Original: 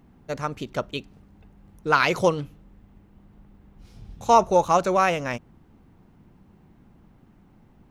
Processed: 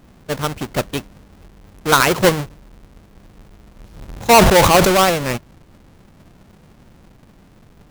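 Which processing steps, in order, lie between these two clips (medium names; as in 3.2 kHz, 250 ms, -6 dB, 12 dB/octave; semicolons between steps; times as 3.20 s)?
square wave that keeps the level; 4.08–5.02 s: decay stretcher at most 32 dB/s; trim +2.5 dB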